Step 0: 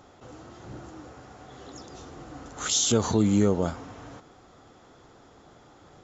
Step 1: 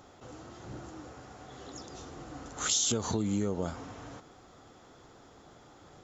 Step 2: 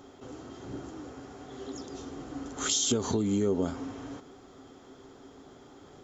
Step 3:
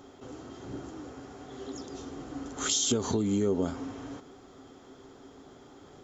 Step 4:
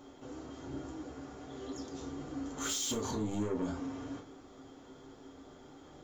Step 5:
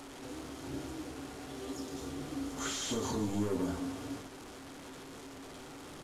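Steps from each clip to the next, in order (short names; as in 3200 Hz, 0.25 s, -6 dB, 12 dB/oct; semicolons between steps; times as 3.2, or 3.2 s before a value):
compressor 6:1, threshold -25 dBFS, peak gain reduction 8 dB; high shelf 5000 Hz +4 dB; gain -2 dB
small resonant body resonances 270/390/3200 Hz, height 12 dB, ringing for 85 ms
nothing audible
soft clip -28.5 dBFS, distortion -9 dB; reverb, pre-delay 3 ms, DRR 0.5 dB; gain -5 dB
delta modulation 64 kbps, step -43.5 dBFS; echo 0.149 s -12.5 dB; gain +1 dB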